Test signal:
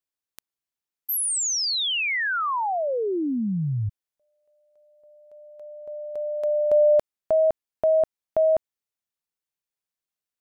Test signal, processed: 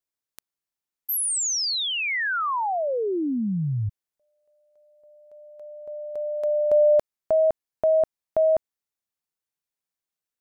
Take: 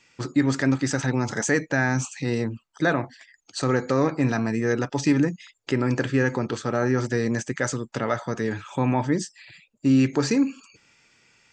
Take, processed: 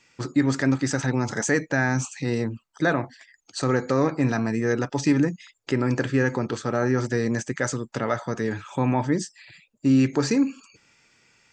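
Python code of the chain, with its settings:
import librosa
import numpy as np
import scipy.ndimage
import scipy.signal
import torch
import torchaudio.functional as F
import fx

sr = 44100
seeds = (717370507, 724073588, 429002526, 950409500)

y = fx.peak_eq(x, sr, hz=3000.0, db=-2.0, octaves=0.77)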